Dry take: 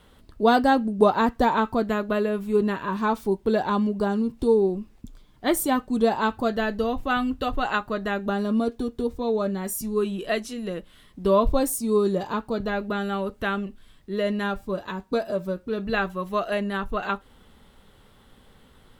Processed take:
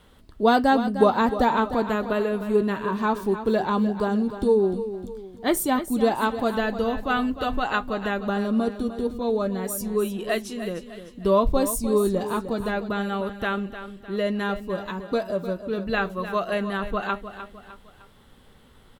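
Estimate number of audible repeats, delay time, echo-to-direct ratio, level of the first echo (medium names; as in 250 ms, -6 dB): 3, 304 ms, -10.5 dB, -11.5 dB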